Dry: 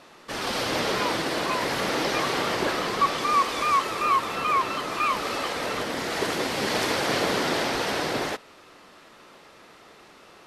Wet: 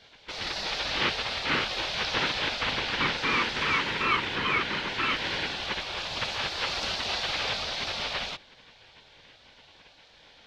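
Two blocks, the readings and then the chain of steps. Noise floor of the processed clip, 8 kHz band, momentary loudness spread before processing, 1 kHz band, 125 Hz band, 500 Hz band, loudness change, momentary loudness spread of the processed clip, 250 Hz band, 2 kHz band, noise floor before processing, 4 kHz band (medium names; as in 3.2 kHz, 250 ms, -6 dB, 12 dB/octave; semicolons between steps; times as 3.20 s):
-56 dBFS, -8.0 dB, 6 LU, -7.5 dB, -2.5 dB, -9.0 dB, -2.5 dB, 6 LU, -7.5 dB, +0.5 dB, -51 dBFS, +2.0 dB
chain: FFT filter 140 Hz 0 dB, 390 Hz -6 dB, 680 Hz -15 dB, 1 kHz -2 dB, 3 kHz +2 dB, 6.4 kHz -13 dB, 9.9 kHz -28 dB; spectral gate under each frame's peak -10 dB weak; trim +6 dB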